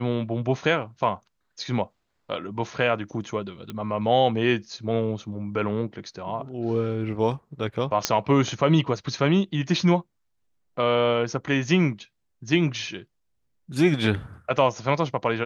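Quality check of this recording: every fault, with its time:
3.70 s: pop -20 dBFS
8.05 s: pop -4 dBFS

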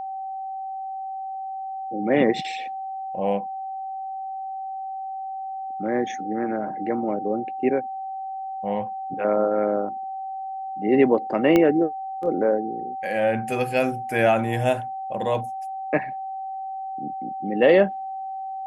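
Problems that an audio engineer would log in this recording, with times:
whine 770 Hz -29 dBFS
11.56 s: pop -7 dBFS

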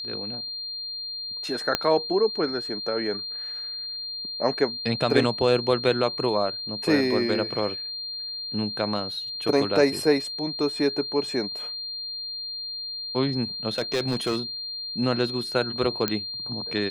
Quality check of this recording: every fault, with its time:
whine 4.2 kHz -31 dBFS
1.75 s: pop -6 dBFS
13.78–14.38 s: clipped -19.5 dBFS
16.08 s: pop -9 dBFS

